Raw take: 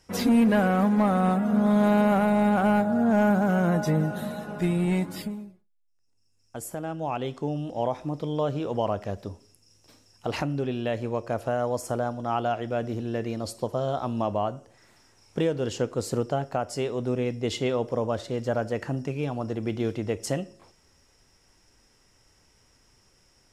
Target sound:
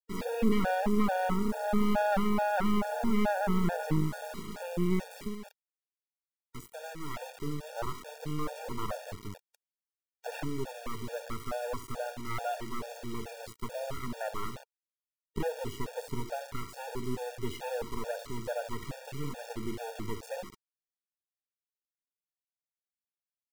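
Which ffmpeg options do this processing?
-filter_complex "[0:a]acrossover=split=2600[a][b];[b]acompressor=threshold=-49dB:ratio=4:attack=1:release=60[c];[a][c]amix=inputs=2:normalize=0,asplit=2[d][e];[e]adelay=66,lowpass=f=1.8k:p=1,volume=-15.5dB,asplit=2[f][g];[g]adelay=66,lowpass=f=1.8k:p=1,volume=0.4,asplit=2[h][i];[i]adelay=66,lowpass=f=1.8k:p=1,volume=0.4,asplit=2[j][k];[k]adelay=66,lowpass=f=1.8k:p=1,volume=0.4[l];[f][h][j][l]amix=inputs=4:normalize=0[m];[d][m]amix=inputs=2:normalize=0,acrusher=bits=4:dc=4:mix=0:aa=0.000001,aeval=exprs='max(val(0),0)':c=same,afftfilt=real='re*gt(sin(2*PI*2.3*pts/sr)*(1-2*mod(floor(b*sr/1024/470),2)),0)':imag='im*gt(sin(2*PI*2.3*pts/sr)*(1-2*mod(floor(b*sr/1024/470),2)),0)':win_size=1024:overlap=0.75"

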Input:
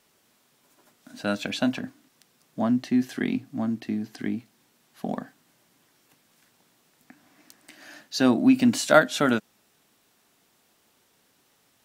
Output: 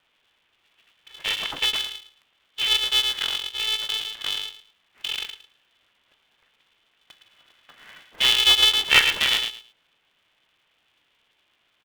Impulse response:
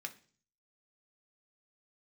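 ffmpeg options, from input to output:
-filter_complex "[0:a]asplit=2[a][b];[b]adelay=110,lowpass=f=1k:p=1,volume=-4.5dB,asplit=2[c][d];[d]adelay=110,lowpass=f=1k:p=1,volume=0.22,asplit=2[e][f];[f]adelay=110,lowpass=f=1k:p=1,volume=0.22[g];[a][c][e][g]amix=inputs=4:normalize=0,lowpass=f=3k:t=q:w=0.5098,lowpass=f=3k:t=q:w=0.6013,lowpass=f=3k:t=q:w=0.9,lowpass=f=3k:t=q:w=2.563,afreqshift=-3500,aeval=exprs='val(0)*sgn(sin(2*PI*220*n/s))':c=same"

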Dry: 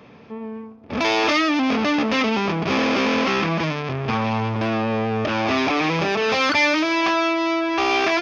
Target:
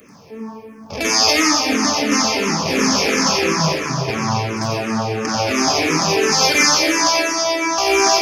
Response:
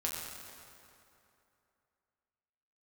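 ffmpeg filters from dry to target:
-filter_complex "[0:a]aexciter=amount=12.7:drive=5.5:freq=5.4k,asplit=2[a][b];[1:a]atrim=start_sample=2205,asetrate=31311,aresample=44100,adelay=89[c];[b][c]afir=irnorm=-1:irlink=0,volume=-5dB[d];[a][d]amix=inputs=2:normalize=0,asplit=2[e][f];[f]afreqshift=-2.9[g];[e][g]amix=inputs=2:normalize=1,volume=2dB"

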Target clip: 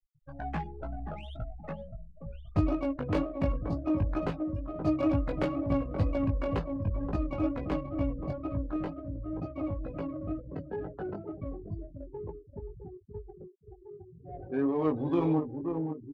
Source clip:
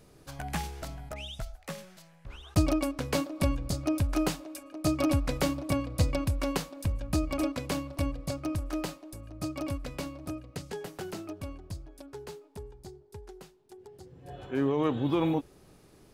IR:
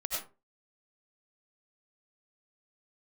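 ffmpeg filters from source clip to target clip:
-filter_complex "[0:a]asplit=2[a][b];[b]adelay=527,lowpass=f=1.8k:p=1,volume=-7.5dB,asplit=2[c][d];[d]adelay=527,lowpass=f=1.8k:p=1,volume=0.39,asplit=2[e][f];[f]adelay=527,lowpass=f=1.8k:p=1,volume=0.39,asplit=2[g][h];[h]adelay=527,lowpass=f=1.8k:p=1,volume=0.39[i];[a][c][e][g][i]amix=inputs=5:normalize=0,asplit=2[j][k];[1:a]atrim=start_sample=2205[l];[k][l]afir=irnorm=-1:irlink=0,volume=-22dB[m];[j][m]amix=inputs=2:normalize=0,afftfilt=real='re*gte(hypot(re,im),0.0158)':imag='im*gte(hypot(re,im),0.0158)':win_size=1024:overlap=0.75,asplit=2[n][o];[o]acompressor=threshold=-36dB:ratio=8,volume=-2dB[p];[n][p]amix=inputs=2:normalize=0,aemphasis=mode=reproduction:type=75kf,flanger=delay=17.5:depth=2.6:speed=2.1,adynamicsmooth=sensitivity=7:basefreq=2k,bass=f=250:g=-1,treble=f=4k:g=-4"

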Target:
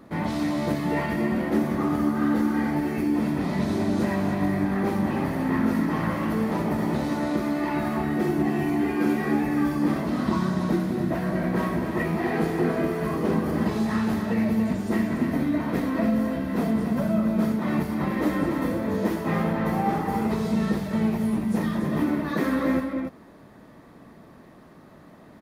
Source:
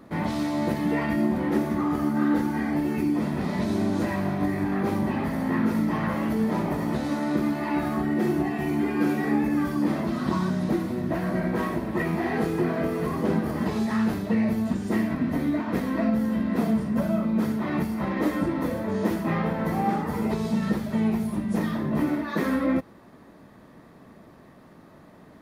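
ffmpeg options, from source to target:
-af "aecho=1:1:198.3|285.7:0.282|0.447"

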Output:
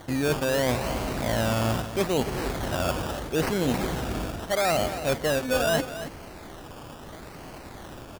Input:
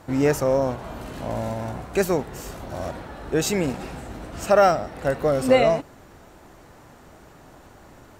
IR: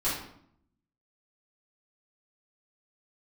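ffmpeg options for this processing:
-af "areverse,acompressor=threshold=-27dB:ratio=16,areverse,acrusher=samples=17:mix=1:aa=0.000001:lfo=1:lforange=10.2:lforate=0.77,aecho=1:1:277:0.251,volume=6dB"

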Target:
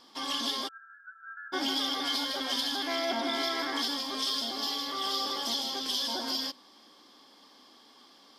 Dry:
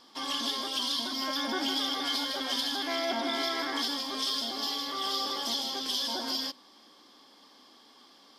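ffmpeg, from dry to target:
-filter_complex "[0:a]asplit=3[a][b][c];[a]afade=t=out:st=0.67:d=0.02[d];[b]asuperpass=centerf=1500:order=20:qfactor=3.6,afade=t=in:st=0.67:d=0.02,afade=t=out:st=1.52:d=0.02[e];[c]afade=t=in:st=1.52:d=0.02[f];[d][e][f]amix=inputs=3:normalize=0"

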